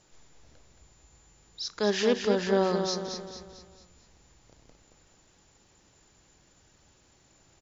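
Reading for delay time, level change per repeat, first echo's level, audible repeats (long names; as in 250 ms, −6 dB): 223 ms, −7.0 dB, −6.5 dB, 5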